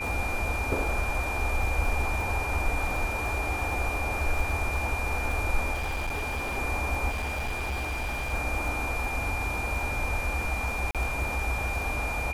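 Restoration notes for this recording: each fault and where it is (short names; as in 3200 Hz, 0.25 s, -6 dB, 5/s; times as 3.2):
crackle 48/s -34 dBFS
tone 2400 Hz -32 dBFS
5.73–6.58 clipped -27 dBFS
7.09–8.34 clipped -27.5 dBFS
10.91–10.95 gap 37 ms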